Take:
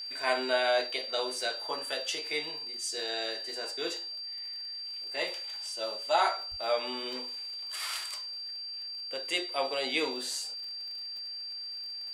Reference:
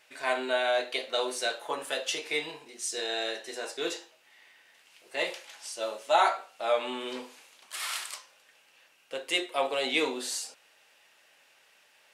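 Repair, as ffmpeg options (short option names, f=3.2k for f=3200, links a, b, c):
-filter_complex "[0:a]adeclick=t=4,bandreject=f=4.7k:w=30,asplit=3[a][b][c];[a]afade=t=out:st=6.5:d=0.02[d];[b]highpass=f=140:w=0.5412,highpass=f=140:w=1.3066,afade=t=in:st=6.5:d=0.02,afade=t=out:st=6.62:d=0.02[e];[c]afade=t=in:st=6.62:d=0.02[f];[d][e][f]amix=inputs=3:normalize=0,asetnsamples=n=441:p=0,asendcmd='0.87 volume volume 3dB',volume=0dB"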